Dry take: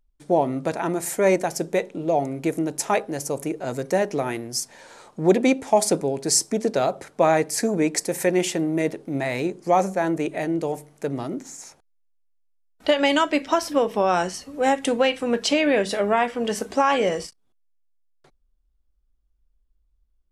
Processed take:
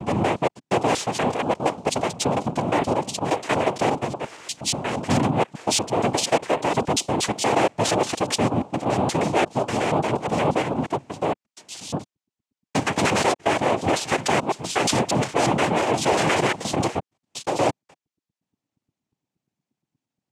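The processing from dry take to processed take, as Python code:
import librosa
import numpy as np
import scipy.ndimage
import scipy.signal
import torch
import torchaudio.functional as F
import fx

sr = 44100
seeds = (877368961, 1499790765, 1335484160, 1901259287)

y = fx.block_reorder(x, sr, ms=118.0, group=6)
y = np.clip(y, -10.0 ** (-21.5 / 20.0), 10.0 ** (-21.5 / 20.0))
y = fx.noise_vocoder(y, sr, seeds[0], bands=4)
y = y * librosa.db_to_amplitude(4.5)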